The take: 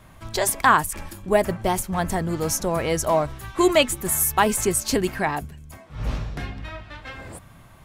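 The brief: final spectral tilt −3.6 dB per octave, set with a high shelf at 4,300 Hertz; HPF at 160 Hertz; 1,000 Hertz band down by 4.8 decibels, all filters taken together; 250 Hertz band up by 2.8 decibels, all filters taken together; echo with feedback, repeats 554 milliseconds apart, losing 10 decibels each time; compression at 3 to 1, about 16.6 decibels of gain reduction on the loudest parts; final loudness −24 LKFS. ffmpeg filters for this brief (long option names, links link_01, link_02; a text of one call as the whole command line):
ffmpeg -i in.wav -af "highpass=160,equalizer=frequency=250:width_type=o:gain=6,equalizer=frequency=1000:width_type=o:gain=-6.5,highshelf=frequency=4300:gain=3.5,acompressor=threshold=-36dB:ratio=3,aecho=1:1:554|1108|1662|2216:0.316|0.101|0.0324|0.0104,volume=11.5dB" out.wav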